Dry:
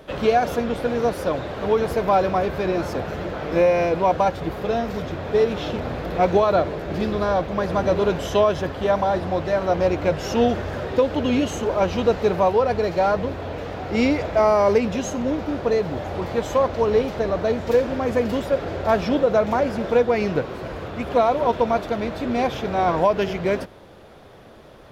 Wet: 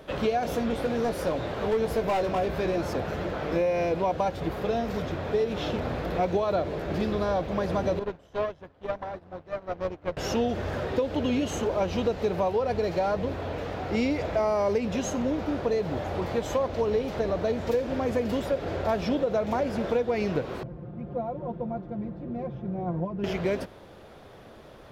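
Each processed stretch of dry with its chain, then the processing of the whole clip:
0:00.43–0:02.76: hard clipping −16.5 dBFS + double-tracking delay 18 ms −7 dB
0:07.99–0:10.17: high-shelf EQ 3,000 Hz −7.5 dB + tube saturation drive 15 dB, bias 0.8 + expander for the loud parts 2.5 to 1, over −34 dBFS
0:20.63–0:23.24: resonant band-pass 120 Hz, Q 1.1 + comb filter 5.7 ms, depth 81%
whole clip: dynamic equaliser 1,300 Hz, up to −4 dB, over −31 dBFS, Q 1.1; downward compressor 4 to 1, threshold −20 dBFS; level −2.5 dB

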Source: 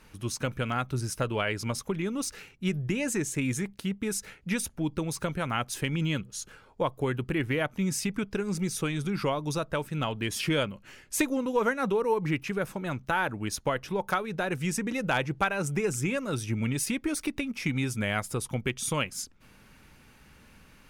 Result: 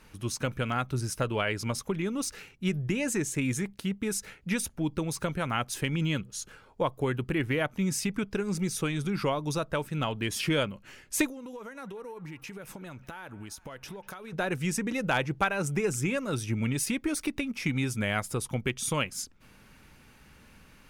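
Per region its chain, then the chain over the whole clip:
0:11.26–0:14.33: high-shelf EQ 4,600 Hz +6 dB + downward compressor 12 to 1, threshold −38 dBFS + delay with a band-pass on its return 194 ms, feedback 60%, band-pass 1,400 Hz, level −17 dB
whole clip: no processing

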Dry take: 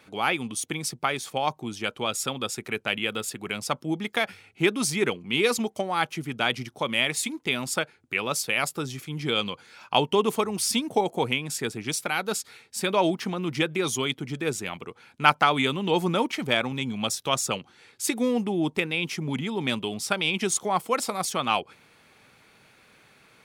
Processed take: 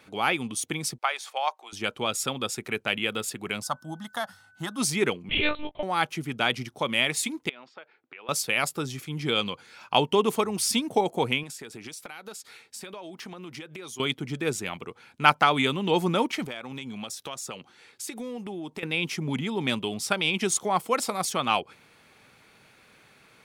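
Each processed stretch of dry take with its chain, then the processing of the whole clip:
0:00.98–0:01.73: high-pass filter 620 Hz 24 dB per octave + high-shelf EQ 7,300 Hz −9.5 dB
0:03.62–0:04.77: low-shelf EQ 220 Hz −5.5 dB + phaser with its sweep stopped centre 990 Hz, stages 4 + steady tone 1,500 Hz −56 dBFS
0:05.29–0:05.83: parametric band 270 Hz −9.5 dB 1.5 octaves + double-tracking delay 23 ms −6 dB + one-pitch LPC vocoder at 8 kHz 300 Hz
0:07.49–0:08.29: downward compressor 4 to 1, threshold −40 dBFS + band-pass filter 430–4,900 Hz + high-frequency loss of the air 230 metres
0:11.43–0:14.00: low-shelf EQ 160 Hz −10.5 dB + downward compressor 16 to 1, threshold −36 dBFS
0:16.45–0:18.83: low-shelf EQ 150 Hz −8.5 dB + downward compressor 5 to 1, threshold −33 dBFS
whole clip: no processing

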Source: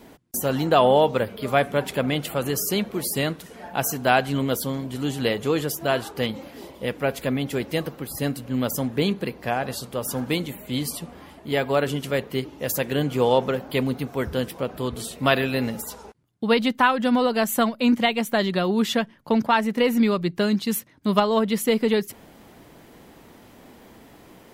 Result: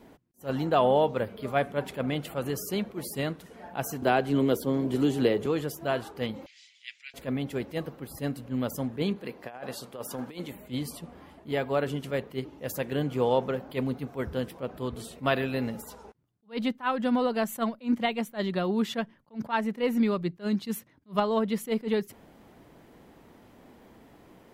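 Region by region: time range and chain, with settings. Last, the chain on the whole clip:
0:04.02–0:05.46: parametric band 370 Hz +9 dB 0.87 octaves + multiband upward and downward compressor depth 70%
0:06.46–0:07.14: elliptic band-pass filter 2,100–7,000 Hz, stop band 50 dB + spectral tilt +3 dB per octave
0:09.16–0:10.52: high-pass filter 310 Hz 6 dB per octave + compressor whose output falls as the input rises −30 dBFS, ratio −0.5
whole clip: high-shelf EQ 2,600 Hz −7 dB; level that may rise only so fast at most 310 dB per second; level −5 dB

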